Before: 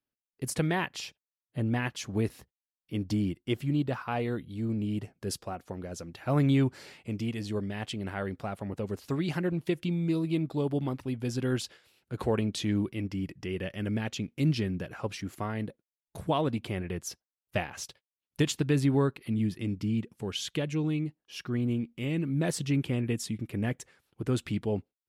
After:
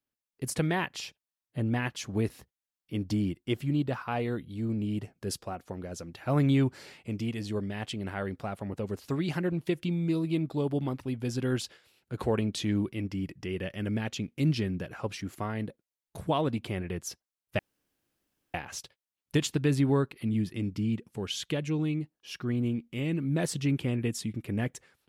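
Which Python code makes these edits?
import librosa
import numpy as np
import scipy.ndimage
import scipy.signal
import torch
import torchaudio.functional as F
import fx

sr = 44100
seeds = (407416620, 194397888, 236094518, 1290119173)

y = fx.edit(x, sr, fx.insert_room_tone(at_s=17.59, length_s=0.95), tone=tone)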